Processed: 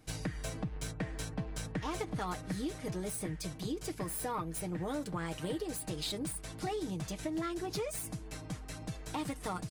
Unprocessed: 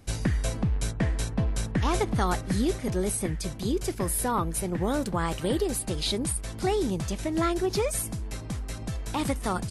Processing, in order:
phase distortion by the signal itself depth 0.056 ms
low-shelf EQ 81 Hz −7 dB
comb filter 6.5 ms, depth 60%
downward compressor 4 to 1, threshold −27 dBFS, peak gain reduction 6.5 dB
level −6.5 dB

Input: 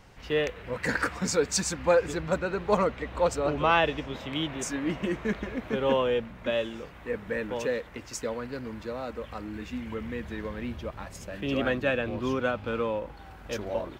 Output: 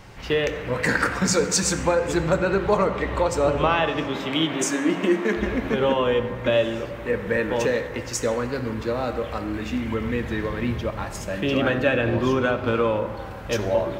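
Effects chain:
0:03.75–0:05.36: high-pass filter 110 Hz → 250 Hz 24 dB per octave
downward compressor 5 to 1, threshold −26 dBFS, peak gain reduction 9 dB
convolution reverb RT60 1.8 s, pre-delay 4 ms, DRR 6.5 dB
level +8.5 dB

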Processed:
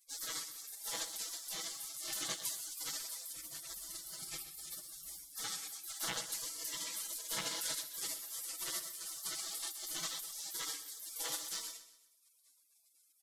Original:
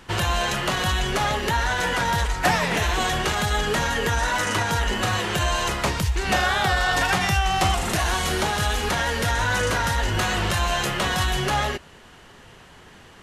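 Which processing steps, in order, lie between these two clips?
loose part that buzzes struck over −28 dBFS, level −17 dBFS
0:03.33–0:05.37: high-pass filter 590 Hz 6 dB per octave
gate on every frequency bin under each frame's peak −30 dB weak
comb filter 6.1 ms, depth 86%
repeating echo 127 ms, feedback 39%, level −13 dB
level −3 dB

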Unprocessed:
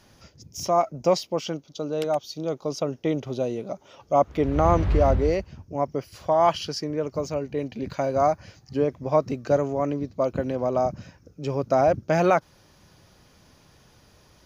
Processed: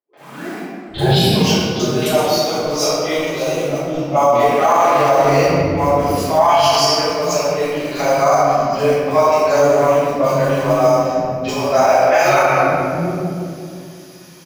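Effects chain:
turntable start at the beginning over 1.49 s
high-pass filter 92 Hz 24 dB per octave
spectral tilt +4 dB per octave
in parallel at −6 dB: bit reduction 6 bits
on the sum: three-band delay without the direct sound mids, highs, lows 40/790 ms, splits 340/3,900 Hz
convolution reverb RT60 2.3 s, pre-delay 4 ms, DRR −16.5 dB
boost into a limiter −2.5 dB
level −3 dB

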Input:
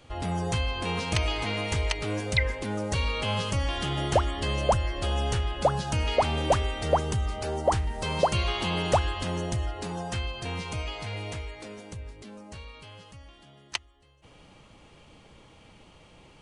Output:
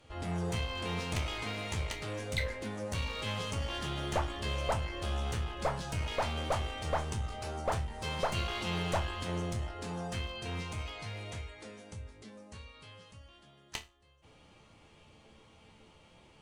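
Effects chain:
asymmetric clip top −30.5 dBFS
resonators tuned to a chord D2 minor, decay 0.25 s
level +4.5 dB

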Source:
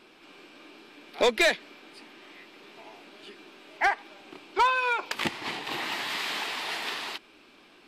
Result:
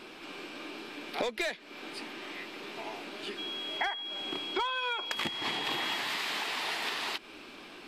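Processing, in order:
downward compressor 12 to 1, threshold −38 dBFS, peak gain reduction 19.5 dB
0:03.37–0:05.97: steady tone 3,300 Hz −44 dBFS
level +7.5 dB

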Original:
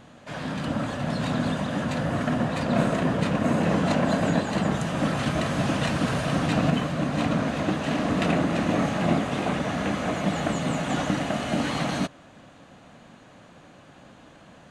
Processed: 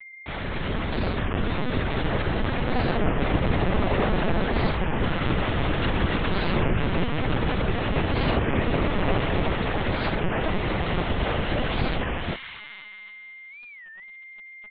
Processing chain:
notch filter 610 Hz, Q 19
in parallel at +2 dB: downward compressor 5 to 1, threshold −37 dBFS, peak gain reduction 17.5 dB
on the sum: loudspeakers that aren't time-aligned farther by 42 metres −10 dB, 97 metres −2 dB
bit reduction 5 bits
on a send: delay with a high-pass on its return 248 ms, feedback 65%, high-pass 1,800 Hz, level −6 dB
on the sum: steady tone 2,100 Hz −38 dBFS
linear-prediction vocoder at 8 kHz pitch kept
wow of a warped record 33 1/3 rpm, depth 250 cents
level −3 dB

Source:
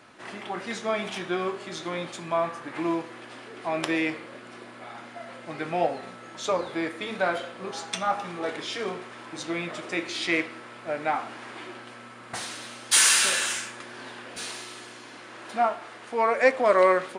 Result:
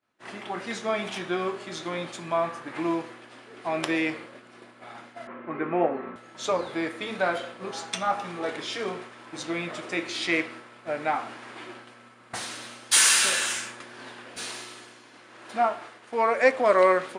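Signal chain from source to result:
0:05.27–0:06.16: loudspeaker in its box 130–2,300 Hz, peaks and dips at 250 Hz +7 dB, 380 Hz +9 dB, 730 Hz −3 dB, 1,100 Hz +8 dB
downward expander −38 dBFS

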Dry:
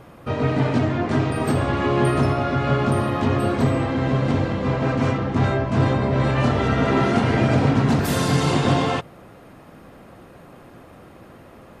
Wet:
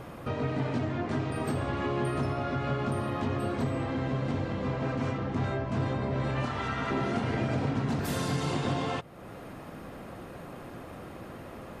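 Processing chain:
0:06.45–0:06.91: low shelf with overshoot 750 Hz −6 dB, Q 1.5
downward compressor 2 to 1, threshold −40 dBFS, peak gain reduction 14 dB
level +2 dB

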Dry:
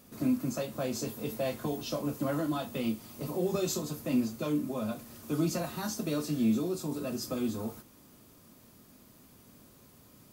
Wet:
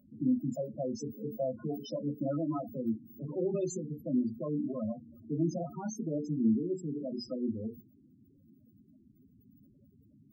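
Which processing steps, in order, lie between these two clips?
mains-hum notches 60/120/180/240/300/360/420/480 Hz
spectral peaks only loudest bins 8

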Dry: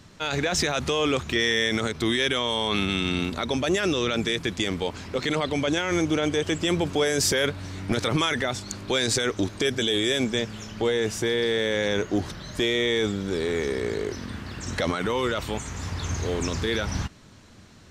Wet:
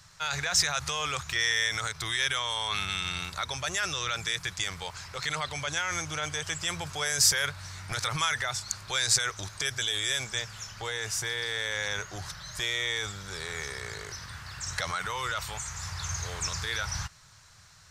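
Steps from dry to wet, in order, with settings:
drawn EQ curve 150 Hz 0 dB, 240 Hz −22 dB, 840 Hz +2 dB, 1,400 Hz +7 dB, 3,100 Hz +2 dB, 5,000 Hz +10 dB
level −7 dB

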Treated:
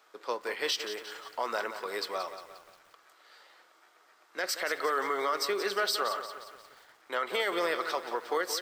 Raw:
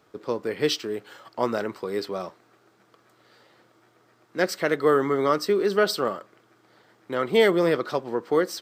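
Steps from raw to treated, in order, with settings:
high-pass filter 790 Hz 12 dB per octave
brickwall limiter −22 dBFS, peak gain reduction 10 dB
feedback echo at a low word length 177 ms, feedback 55%, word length 9 bits, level −10.5 dB
level +2 dB

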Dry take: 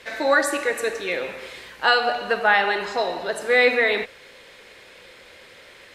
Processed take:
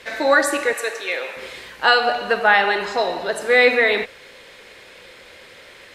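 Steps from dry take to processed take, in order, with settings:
0:00.73–0:01.37: high-pass filter 560 Hz 12 dB per octave
level +3 dB

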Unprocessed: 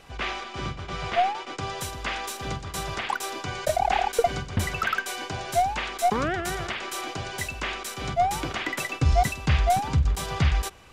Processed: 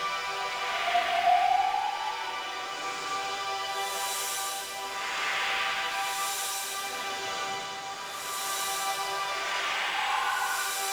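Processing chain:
high-pass filter 680 Hz 12 dB per octave
power curve on the samples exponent 0.7
extreme stretch with random phases 4.7×, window 0.25 s, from 0:00.94
level −3 dB

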